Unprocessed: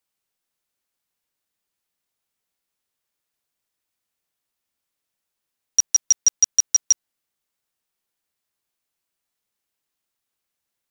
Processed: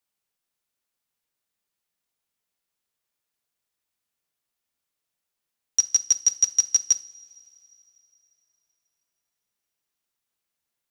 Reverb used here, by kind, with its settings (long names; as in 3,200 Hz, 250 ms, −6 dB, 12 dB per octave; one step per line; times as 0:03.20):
coupled-rooms reverb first 0.41 s, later 3.3 s, from −18 dB, DRR 12.5 dB
level −2.5 dB